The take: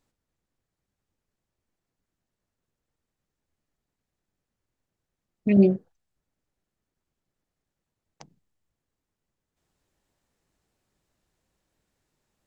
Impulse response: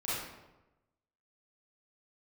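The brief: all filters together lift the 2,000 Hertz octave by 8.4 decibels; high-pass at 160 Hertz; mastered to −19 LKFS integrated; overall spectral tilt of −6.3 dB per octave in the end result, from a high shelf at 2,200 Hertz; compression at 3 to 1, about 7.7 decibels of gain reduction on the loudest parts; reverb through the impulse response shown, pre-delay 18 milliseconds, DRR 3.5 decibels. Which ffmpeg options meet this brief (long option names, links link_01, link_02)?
-filter_complex "[0:a]highpass=160,equalizer=frequency=2000:width_type=o:gain=8,highshelf=frequency=2200:gain=3.5,acompressor=threshold=-23dB:ratio=3,asplit=2[link_01][link_02];[1:a]atrim=start_sample=2205,adelay=18[link_03];[link_02][link_03]afir=irnorm=-1:irlink=0,volume=-9dB[link_04];[link_01][link_04]amix=inputs=2:normalize=0,volume=10dB"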